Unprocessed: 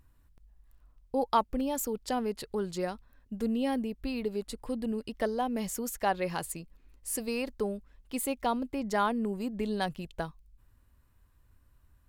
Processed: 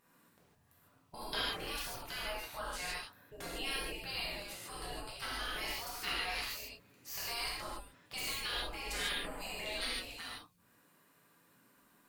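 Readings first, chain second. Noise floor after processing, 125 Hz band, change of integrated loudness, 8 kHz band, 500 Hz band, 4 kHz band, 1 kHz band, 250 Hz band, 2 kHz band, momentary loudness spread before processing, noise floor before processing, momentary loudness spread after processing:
-69 dBFS, -9.5 dB, -6.0 dB, -5.0 dB, -14.0 dB, +7.0 dB, -11.0 dB, -20.0 dB, +2.0 dB, 10 LU, -65 dBFS, 10 LU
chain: spectral gate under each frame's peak -20 dB weak; non-linear reverb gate 0.18 s flat, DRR -7.5 dB; gain +1 dB

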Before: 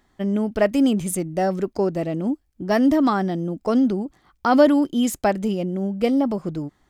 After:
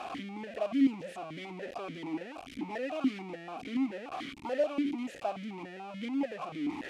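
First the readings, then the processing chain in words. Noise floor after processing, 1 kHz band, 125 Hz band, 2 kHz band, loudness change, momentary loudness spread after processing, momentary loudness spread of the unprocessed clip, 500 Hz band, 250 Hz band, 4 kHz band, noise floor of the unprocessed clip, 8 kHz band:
-48 dBFS, -14.5 dB, -20.5 dB, -11.0 dB, -14.0 dB, 12 LU, 9 LU, -15.0 dB, -13.5 dB, -10.5 dB, -65 dBFS, under -20 dB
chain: delta modulation 64 kbps, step -14 dBFS; vowel sequencer 6.9 Hz; gain -6.5 dB

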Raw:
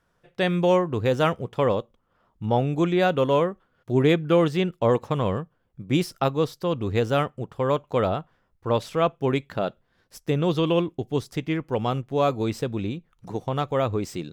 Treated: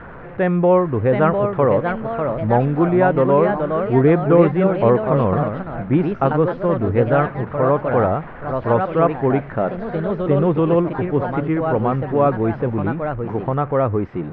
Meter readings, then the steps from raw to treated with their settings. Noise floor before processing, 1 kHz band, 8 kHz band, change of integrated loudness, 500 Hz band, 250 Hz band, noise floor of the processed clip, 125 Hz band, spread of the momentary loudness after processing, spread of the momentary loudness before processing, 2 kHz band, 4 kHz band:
-70 dBFS, +7.0 dB, under -30 dB, +6.5 dB, +7.0 dB, +7.0 dB, -34 dBFS, +7.0 dB, 8 LU, 10 LU, +5.0 dB, under -10 dB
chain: zero-crossing step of -34.5 dBFS; LPF 1800 Hz 24 dB/oct; echoes that change speed 0.772 s, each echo +2 st, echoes 3, each echo -6 dB; gain +5 dB

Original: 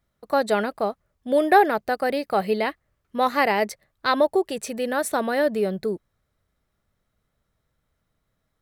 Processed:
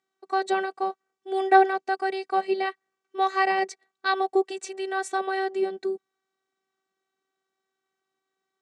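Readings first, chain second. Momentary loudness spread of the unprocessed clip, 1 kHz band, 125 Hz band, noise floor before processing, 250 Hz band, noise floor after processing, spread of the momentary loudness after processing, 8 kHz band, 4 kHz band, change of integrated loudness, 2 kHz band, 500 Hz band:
11 LU, -0.5 dB, n/a, -76 dBFS, -6.0 dB, -84 dBFS, 12 LU, -6.0 dB, -3.5 dB, -3.0 dB, -2.0 dB, -4.5 dB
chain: robotiser 382 Hz; elliptic band-pass 190–7700 Hz, stop band 40 dB

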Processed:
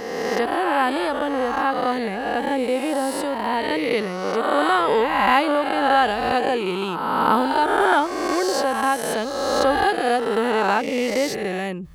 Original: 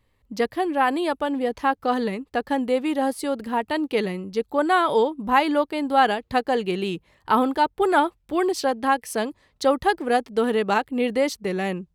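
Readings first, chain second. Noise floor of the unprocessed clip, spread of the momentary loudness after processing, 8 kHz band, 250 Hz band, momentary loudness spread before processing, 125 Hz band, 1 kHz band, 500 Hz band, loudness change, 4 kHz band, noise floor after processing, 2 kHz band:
-67 dBFS, 6 LU, +5.5 dB, 0.0 dB, 7 LU, +0.5 dB, +3.0 dB, +2.0 dB, +2.0 dB, +4.5 dB, -28 dBFS, +4.0 dB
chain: spectral swells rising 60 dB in 1.87 s; reverse; upward compressor, threshold -26 dBFS; reverse; gain -2 dB

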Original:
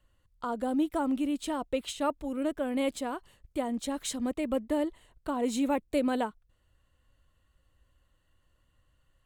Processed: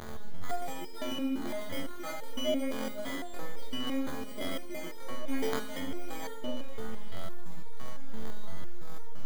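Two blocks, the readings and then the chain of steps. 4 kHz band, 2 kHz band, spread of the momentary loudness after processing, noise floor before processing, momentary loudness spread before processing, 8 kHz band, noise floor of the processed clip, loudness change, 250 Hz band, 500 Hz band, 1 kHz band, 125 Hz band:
+2.5 dB, +0.5 dB, 15 LU, -71 dBFS, 8 LU, -4.5 dB, -36 dBFS, -6.0 dB, -6.5 dB, -4.5 dB, -6.0 dB, n/a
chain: delta modulation 64 kbps, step -35 dBFS; robotiser 88.5 Hz; in parallel at +3 dB: limiter -21.5 dBFS, peak gain reduction 9 dB; on the sum: bell 1100 Hz -5.5 dB 0.65 oct; sample-rate reducer 2700 Hz, jitter 0%; on a send: delay with a stepping band-pass 0.247 s, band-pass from 180 Hz, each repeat 1.4 oct, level -2 dB; on the sum: level quantiser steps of 10 dB; Schroeder reverb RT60 1 s, combs from 28 ms, DRR 1.5 dB; stuck buffer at 3.23, samples 512, times 8; stepped resonator 5.9 Hz 73–460 Hz; gain +6 dB

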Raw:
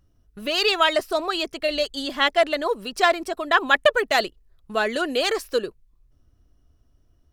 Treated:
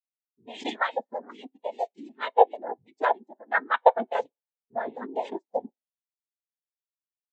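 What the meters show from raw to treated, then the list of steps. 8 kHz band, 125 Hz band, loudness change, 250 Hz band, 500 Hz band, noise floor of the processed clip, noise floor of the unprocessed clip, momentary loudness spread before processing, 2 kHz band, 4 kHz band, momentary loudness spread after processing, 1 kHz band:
under -20 dB, n/a, -6.0 dB, -10.0 dB, -5.5 dB, under -85 dBFS, -62 dBFS, 9 LU, -10.0 dB, -19.5 dB, 16 LU, -1.5 dB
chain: noise vocoder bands 6; two-slope reverb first 0.27 s, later 1.8 s, DRR 14.5 dB; spectral expander 2.5:1

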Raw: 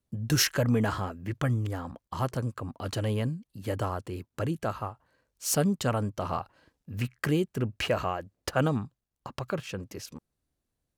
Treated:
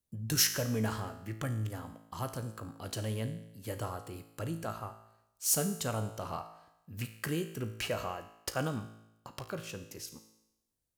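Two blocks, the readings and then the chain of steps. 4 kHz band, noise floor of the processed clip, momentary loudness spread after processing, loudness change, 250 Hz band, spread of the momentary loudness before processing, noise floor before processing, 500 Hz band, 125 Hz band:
-2.5 dB, -80 dBFS, 17 LU, -5.0 dB, -7.5 dB, 14 LU, -84 dBFS, -7.0 dB, -7.0 dB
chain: high shelf 5200 Hz +12 dB; resonator 55 Hz, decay 0.87 s, harmonics all, mix 70%

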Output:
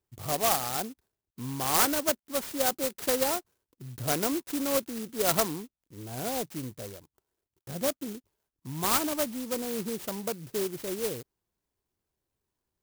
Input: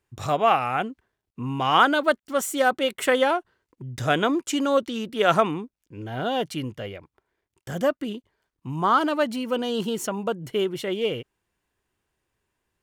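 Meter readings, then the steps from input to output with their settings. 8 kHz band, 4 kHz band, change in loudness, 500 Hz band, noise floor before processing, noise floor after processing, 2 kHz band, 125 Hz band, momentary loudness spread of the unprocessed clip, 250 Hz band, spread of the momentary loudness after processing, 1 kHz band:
+5.5 dB, -5.0 dB, -5.0 dB, -7.5 dB, -85 dBFS, under -85 dBFS, -10.0 dB, -6.5 dB, 15 LU, -6.5 dB, 16 LU, -10.0 dB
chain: Butterworth band-stop 5400 Hz, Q 1.5; clock jitter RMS 0.15 ms; gain -6.5 dB

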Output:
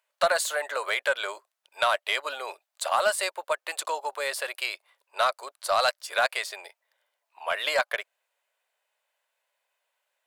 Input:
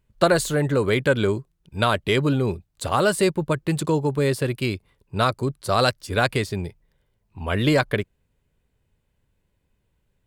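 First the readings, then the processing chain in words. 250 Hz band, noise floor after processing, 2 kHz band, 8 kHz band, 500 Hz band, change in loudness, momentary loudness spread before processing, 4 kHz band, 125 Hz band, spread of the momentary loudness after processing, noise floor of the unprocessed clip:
under -30 dB, -84 dBFS, -1.0 dB, -0.5 dB, -7.5 dB, -5.0 dB, 11 LU, -1.5 dB, under -35 dB, 12 LU, -72 dBFS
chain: elliptic high-pass 610 Hz, stop band 80 dB; in parallel at -2 dB: compressor, threshold -29 dBFS, peak gain reduction 13.5 dB; on the sum: soft clip -9 dBFS, distortion -21 dB; gain -2.5 dB

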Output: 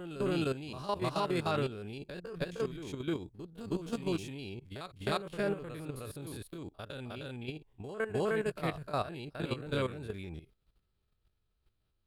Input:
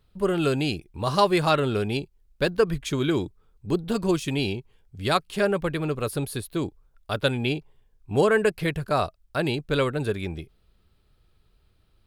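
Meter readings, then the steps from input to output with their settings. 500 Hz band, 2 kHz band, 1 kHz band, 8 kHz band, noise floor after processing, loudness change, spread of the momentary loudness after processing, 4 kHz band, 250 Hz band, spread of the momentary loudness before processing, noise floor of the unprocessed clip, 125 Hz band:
-11.0 dB, -12.0 dB, -11.0 dB, -12.0 dB, -78 dBFS, -11.0 dB, 12 LU, -12.0 dB, -10.5 dB, 11 LU, -64 dBFS, -10.5 dB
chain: stepped spectrum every 50 ms; reverse echo 0.309 s -4.5 dB; level quantiser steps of 12 dB; gain -6.5 dB

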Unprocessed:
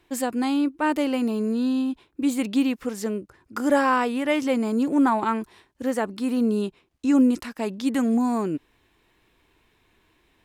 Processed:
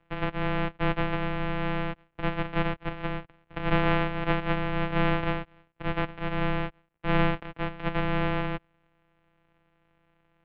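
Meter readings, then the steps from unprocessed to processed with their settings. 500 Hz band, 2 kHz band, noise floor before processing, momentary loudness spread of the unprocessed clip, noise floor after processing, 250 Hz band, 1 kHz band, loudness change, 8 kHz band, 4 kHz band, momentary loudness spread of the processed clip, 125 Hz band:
-4.5 dB, +1.0 dB, -66 dBFS, 10 LU, -70 dBFS, -10.5 dB, -3.5 dB, -5.5 dB, under -30 dB, -1.0 dB, 9 LU, n/a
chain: sample sorter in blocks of 256 samples; mistuned SSB -360 Hz 280–3300 Hz

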